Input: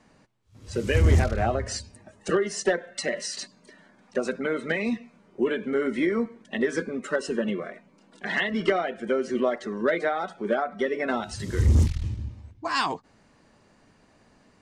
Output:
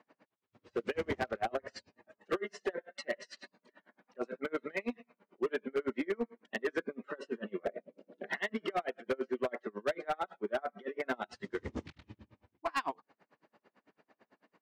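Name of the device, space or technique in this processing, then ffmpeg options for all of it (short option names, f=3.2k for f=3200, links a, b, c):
helicopter radio: -filter_complex "[0:a]asettb=1/sr,asplit=3[a][b][c];[a]atrim=end=7.654[d];[b]atrim=start=7.65:end=8.29,asetpts=PTS-STARTPTS,afade=t=in:d=0.004:c=qsin,afade=t=out:st=0.636:d=0.004:c=qsin,lowshelf=f=740:t=q:w=3:g=9[e];[c]atrim=start=8.286[f];[d][e]acrossfade=d=0.004:c1=hsin:c2=qsin[g];[g][f]acrossfade=d=0.004:c1=qsin:c2=hsin,highpass=300,lowpass=2.7k,aeval=exprs='val(0)*pow(10,-34*(0.5-0.5*cos(2*PI*9*n/s))/20)':c=same,asoftclip=type=hard:threshold=-26.5dB"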